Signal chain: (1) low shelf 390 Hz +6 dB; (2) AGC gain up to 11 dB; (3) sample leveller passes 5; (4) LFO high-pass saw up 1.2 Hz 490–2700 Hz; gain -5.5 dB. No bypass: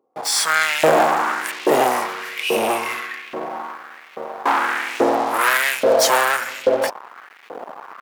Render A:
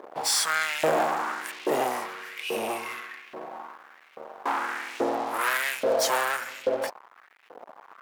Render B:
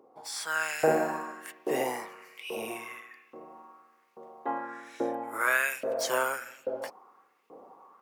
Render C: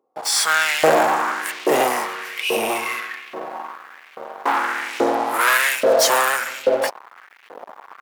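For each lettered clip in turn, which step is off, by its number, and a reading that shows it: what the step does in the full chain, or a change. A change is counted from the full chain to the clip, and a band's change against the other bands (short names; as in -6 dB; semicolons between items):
2, momentary loudness spread change -2 LU; 3, crest factor change +2.5 dB; 1, 125 Hz band -2.5 dB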